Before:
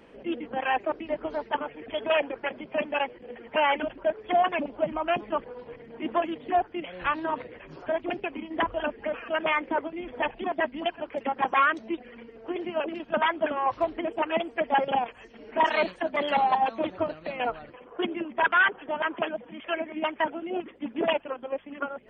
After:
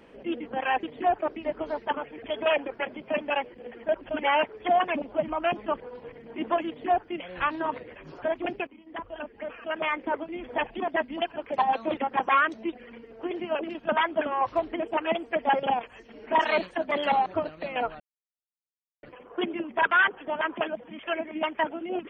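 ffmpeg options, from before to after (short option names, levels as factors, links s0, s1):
-filter_complex "[0:a]asplit=10[s0][s1][s2][s3][s4][s5][s6][s7][s8][s9];[s0]atrim=end=0.832[s10];[s1]atrim=start=6.308:end=6.672[s11];[s2]atrim=start=0.828:end=3.502[s12];[s3]atrim=start=3.498:end=4.132,asetpts=PTS-STARTPTS,areverse[s13];[s4]atrim=start=4.128:end=8.31,asetpts=PTS-STARTPTS,afade=t=out:st=4.178:d=0.004:c=hsin:silence=0.133352[s14];[s5]atrim=start=8.31:end=11.222,asetpts=PTS-STARTPTS,afade=t=in:d=1.73:silence=0.133352[s15];[s6]atrim=start=16.508:end=16.902[s16];[s7]atrim=start=11.218:end=16.512[s17];[s8]atrim=start=16.898:end=17.64,asetpts=PTS-STARTPTS,afade=t=out:st=0.738:d=0.004:c=hsin,apad=pad_dur=1.03[s18];[s9]atrim=start=17.64,asetpts=PTS-STARTPTS,afade=t=in:d=0.004:c=hsin[s19];[s10][s11]acrossfade=d=0.004:c1=hsin:c2=hsin[s20];[s20][s12]acrossfade=d=0.004:c1=hsin:c2=hsin[s21];[s21][s13]acrossfade=d=0.004:c1=hsin:c2=hsin[s22];[s14][s15]concat=n=2:v=0:a=1[s23];[s22][s23]acrossfade=d=0.004:c1=hsin:c2=hsin[s24];[s24][s16]acrossfade=d=0.004:c1=hsin:c2=hsin[s25];[s25][s17]acrossfade=d=0.004:c1=hsin:c2=hsin[s26];[s18][s19]concat=n=2:v=0:a=1[s27];[s26][s27]acrossfade=d=0.004:c1=hsin:c2=hsin"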